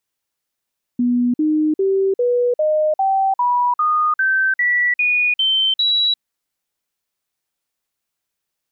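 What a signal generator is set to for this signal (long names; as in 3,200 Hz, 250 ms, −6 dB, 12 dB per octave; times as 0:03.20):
stepped sweep 244 Hz up, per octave 3, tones 13, 0.35 s, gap 0.05 s −13.5 dBFS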